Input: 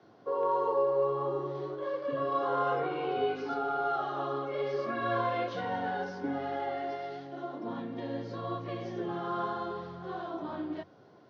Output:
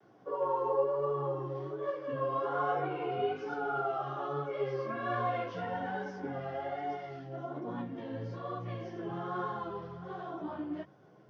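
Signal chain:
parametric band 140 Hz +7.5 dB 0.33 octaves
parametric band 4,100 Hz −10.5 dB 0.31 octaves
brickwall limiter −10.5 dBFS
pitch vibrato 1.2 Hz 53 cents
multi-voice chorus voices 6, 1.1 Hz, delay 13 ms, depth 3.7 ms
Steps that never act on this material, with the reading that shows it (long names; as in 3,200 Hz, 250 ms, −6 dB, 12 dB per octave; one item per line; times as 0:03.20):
brickwall limiter −10.5 dBFS: peak of its input −18.0 dBFS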